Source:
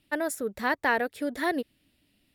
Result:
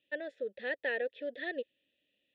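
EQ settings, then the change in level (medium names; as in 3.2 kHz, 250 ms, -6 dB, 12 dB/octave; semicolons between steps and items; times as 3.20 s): vowel filter e; resonant low-pass 3.5 kHz, resonance Q 5.9; bass shelf 420 Hz +7.5 dB; -2.0 dB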